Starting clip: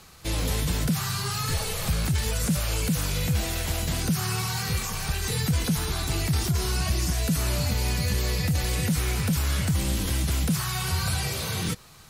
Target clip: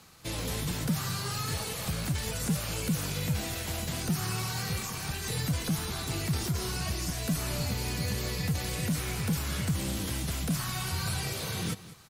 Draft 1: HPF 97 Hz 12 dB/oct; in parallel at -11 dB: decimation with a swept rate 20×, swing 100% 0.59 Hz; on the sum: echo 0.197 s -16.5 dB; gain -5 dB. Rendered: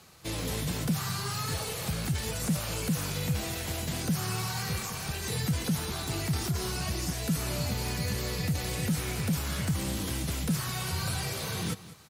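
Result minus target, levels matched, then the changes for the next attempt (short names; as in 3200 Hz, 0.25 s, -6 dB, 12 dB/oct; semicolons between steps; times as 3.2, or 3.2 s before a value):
decimation with a swept rate: distortion -5 dB
change: decimation with a swept rate 68×, swing 100% 0.59 Hz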